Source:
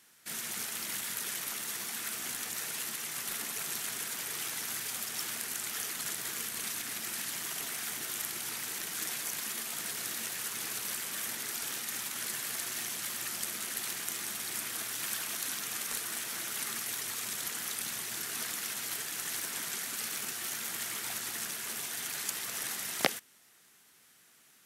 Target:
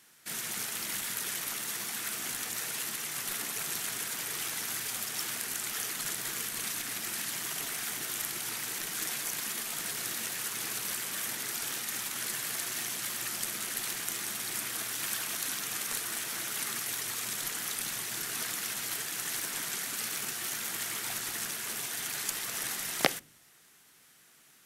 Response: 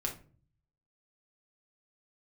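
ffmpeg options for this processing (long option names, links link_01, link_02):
-filter_complex "[0:a]asplit=2[link_01][link_02];[link_02]aemphasis=mode=reproduction:type=bsi[link_03];[1:a]atrim=start_sample=2205[link_04];[link_03][link_04]afir=irnorm=-1:irlink=0,volume=-20.5dB[link_05];[link_01][link_05]amix=inputs=2:normalize=0,volume=1.5dB"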